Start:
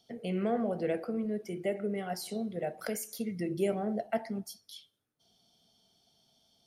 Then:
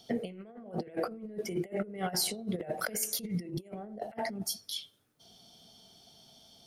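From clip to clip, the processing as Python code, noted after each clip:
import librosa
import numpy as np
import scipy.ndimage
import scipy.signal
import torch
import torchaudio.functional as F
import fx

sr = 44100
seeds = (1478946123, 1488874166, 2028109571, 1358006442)

y = fx.over_compress(x, sr, threshold_db=-40.0, ratio=-0.5)
y = y * 10.0 ** (4.5 / 20.0)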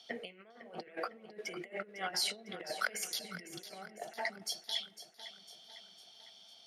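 y = fx.bandpass_q(x, sr, hz=2300.0, q=0.87)
y = fx.echo_feedback(y, sr, ms=503, feedback_pct=54, wet_db=-13.0)
y = y * 10.0 ** (4.0 / 20.0)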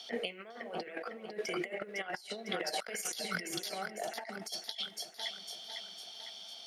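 y = fx.highpass(x, sr, hz=230.0, slope=6)
y = fx.over_compress(y, sr, threshold_db=-43.0, ratio=-0.5)
y = y * 10.0 ** (6.0 / 20.0)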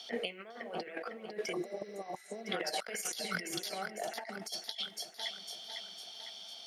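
y = fx.spec_repair(x, sr, seeds[0], start_s=1.55, length_s=0.84, low_hz=1200.0, high_hz=6200.0, source='after')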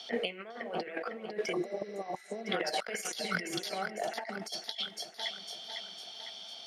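y = fx.high_shelf(x, sr, hz=7600.0, db=-11.0)
y = y * 10.0 ** (4.0 / 20.0)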